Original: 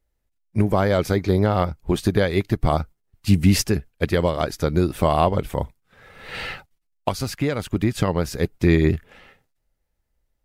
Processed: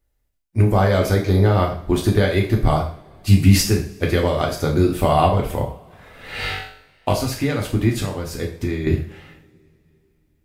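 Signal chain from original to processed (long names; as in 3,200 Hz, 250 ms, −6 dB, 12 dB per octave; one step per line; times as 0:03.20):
high-shelf EQ 10,000 Hz +4 dB
0:06.37–0:07.13: flutter between parallel walls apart 3.6 metres, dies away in 0.47 s
0:07.94–0:08.87: downward compressor 4 to 1, threshold −24 dBFS, peak gain reduction 11 dB
coupled-rooms reverb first 0.46 s, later 3.3 s, from −28 dB, DRR −1 dB
level −1 dB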